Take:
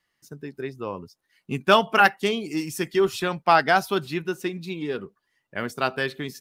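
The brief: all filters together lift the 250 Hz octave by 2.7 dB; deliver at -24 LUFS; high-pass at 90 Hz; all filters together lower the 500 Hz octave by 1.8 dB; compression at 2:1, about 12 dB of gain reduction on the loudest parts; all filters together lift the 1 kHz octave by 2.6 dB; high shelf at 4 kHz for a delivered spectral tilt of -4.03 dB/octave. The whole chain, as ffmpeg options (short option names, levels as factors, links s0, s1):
-af "highpass=90,equalizer=f=250:t=o:g=6.5,equalizer=f=500:t=o:g=-7,equalizer=f=1000:t=o:g=5,highshelf=f=4000:g=6.5,acompressor=threshold=0.0251:ratio=2,volume=2.37"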